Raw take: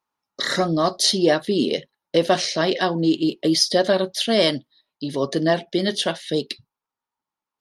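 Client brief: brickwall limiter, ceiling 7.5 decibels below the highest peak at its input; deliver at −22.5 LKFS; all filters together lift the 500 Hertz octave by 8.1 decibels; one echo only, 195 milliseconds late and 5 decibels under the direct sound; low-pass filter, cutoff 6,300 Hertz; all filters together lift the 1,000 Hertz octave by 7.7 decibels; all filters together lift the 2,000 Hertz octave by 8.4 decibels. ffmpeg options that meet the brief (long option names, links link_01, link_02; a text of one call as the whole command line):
ffmpeg -i in.wav -af "lowpass=6300,equalizer=frequency=500:width_type=o:gain=8,equalizer=frequency=1000:width_type=o:gain=5.5,equalizer=frequency=2000:width_type=o:gain=8,alimiter=limit=-5.5dB:level=0:latency=1,aecho=1:1:195:0.562,volume=-6dB" out.wav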